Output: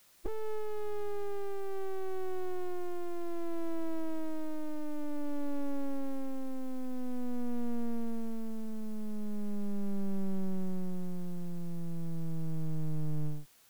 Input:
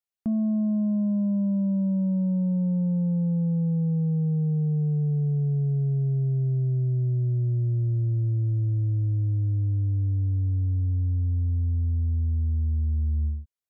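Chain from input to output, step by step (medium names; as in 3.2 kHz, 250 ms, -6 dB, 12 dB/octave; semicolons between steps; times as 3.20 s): formant shift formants -4 st; full-wave rectifier; word length cut 10-bit, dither triangular; trim -2.5 dB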